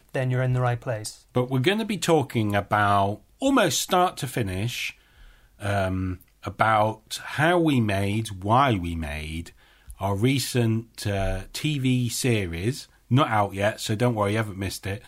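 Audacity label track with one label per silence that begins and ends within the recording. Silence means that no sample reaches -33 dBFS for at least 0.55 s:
4.900000	5.620000	silence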